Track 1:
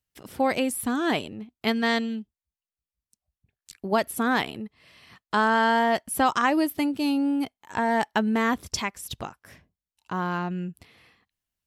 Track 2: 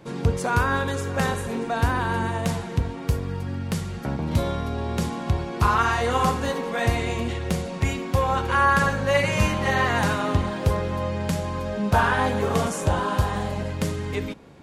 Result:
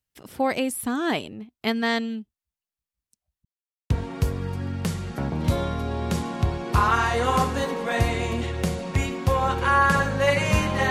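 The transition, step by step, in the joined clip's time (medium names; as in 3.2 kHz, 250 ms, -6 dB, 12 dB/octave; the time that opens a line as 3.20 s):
track 1
3.45–3.90 s: mute
3.90 s: go over to track 2 from 2.77 s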